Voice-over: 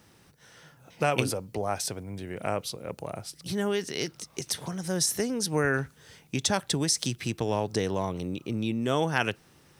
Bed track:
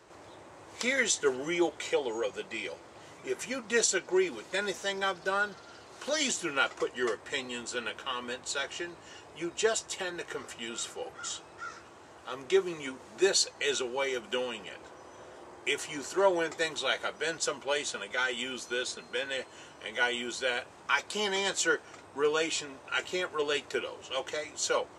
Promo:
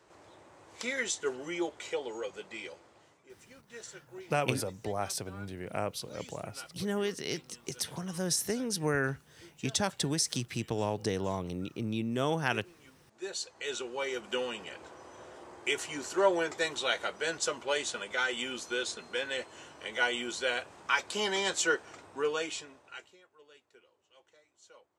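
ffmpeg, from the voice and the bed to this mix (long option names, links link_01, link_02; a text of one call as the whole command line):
ffmpeg -i stem1.wav -i stem2.wav -filter_complex "[0:a]adelay=3300,volume=-4dB[link_01];[1:a]volume=14.5dB,afade=type=out:start_time=2.66:duration=0.61:silence=0.177828,afade=type=in:start_time=13.09:duration=1.37:silence=0.1,afade=type=out:start_time=21.91:duration=1.25:silence=0.0398107[link_02];[link_01][link_02]amix=inputs=2:normalize=0" out.wav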